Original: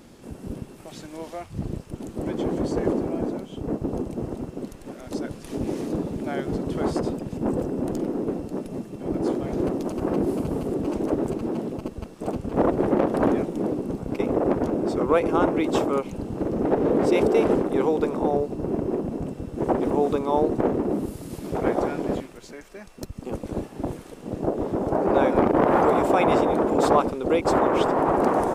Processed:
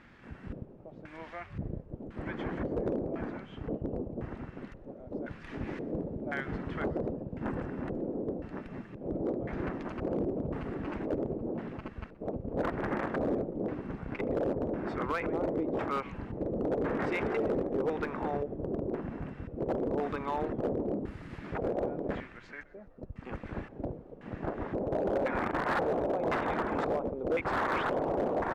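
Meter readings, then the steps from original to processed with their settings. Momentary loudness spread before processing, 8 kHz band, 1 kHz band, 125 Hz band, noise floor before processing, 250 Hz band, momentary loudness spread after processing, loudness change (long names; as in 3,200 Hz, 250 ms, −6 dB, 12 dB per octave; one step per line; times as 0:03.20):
15 LU, can't be measured, −10.0 dB, −7.5 dB, −44 dBFS, −10.5 dB, 13 LU, −10.0 dB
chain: guitar amp tone stack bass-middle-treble 5-5-5
brickwall limiter −30.5 dBFS, peak gain reduction 9 dB
auto-filter low-pass square 0.95 Hz 550–1,800 Hz
echo with shifted repeats 125 ms, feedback 53%, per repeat −120 Hz, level −20.5 dB
hard clipping −32.5 dBFS, distortion −19 dB
level +8 dB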